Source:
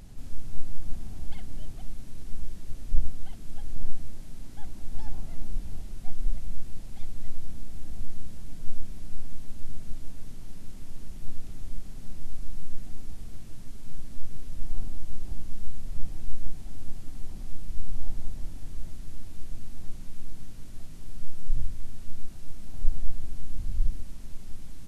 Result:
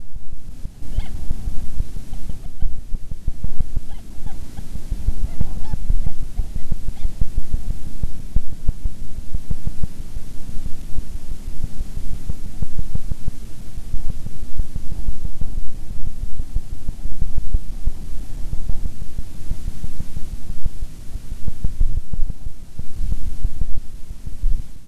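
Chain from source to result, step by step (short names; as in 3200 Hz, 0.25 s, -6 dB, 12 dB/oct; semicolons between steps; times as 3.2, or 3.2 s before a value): slices in reverse order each 0.164 s, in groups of 5; AGC gain up to 11.5 dB; gain -1 dB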